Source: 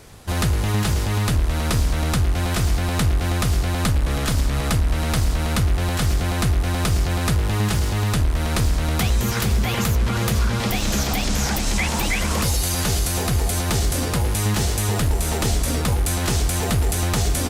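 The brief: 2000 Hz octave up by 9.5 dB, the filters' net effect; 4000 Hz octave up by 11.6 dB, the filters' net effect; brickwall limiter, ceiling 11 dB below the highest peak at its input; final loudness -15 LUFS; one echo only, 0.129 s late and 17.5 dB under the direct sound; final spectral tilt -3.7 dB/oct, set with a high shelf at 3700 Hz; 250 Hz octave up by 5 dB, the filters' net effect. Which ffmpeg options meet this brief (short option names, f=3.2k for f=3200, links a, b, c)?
-af "equalizer=f=250:t=o:g=6.5,equalizer=f=2k:t=o:g=7.5,highshelf=f=3.7k:g=6.5,equalizer=f=4k:t=o:g=8,alimiter=limit=-9.5dB:level=0:latency=1,aecho=1:1:129:0.133,volume=4dB"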